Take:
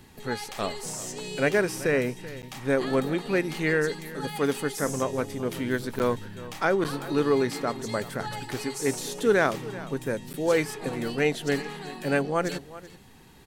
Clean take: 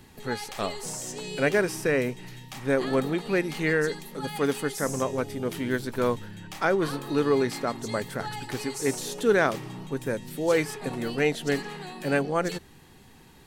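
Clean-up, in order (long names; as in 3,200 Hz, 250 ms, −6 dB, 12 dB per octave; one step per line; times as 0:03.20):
repair the gap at 0:02.42/0:05.99/0:06.84/0:10.33, 9 ms
echo removal 382 ms −17 dB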